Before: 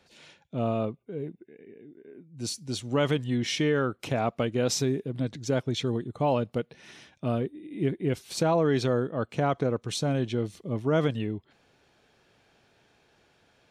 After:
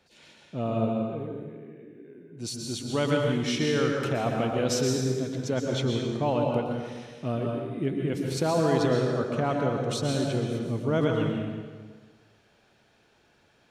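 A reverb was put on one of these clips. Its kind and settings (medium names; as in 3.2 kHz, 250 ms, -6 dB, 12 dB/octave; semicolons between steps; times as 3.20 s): plate-style reverb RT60 1.5 s, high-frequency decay 0.85×, pre-delay 105 ms, DRR 0.5 dB; trim -2 dB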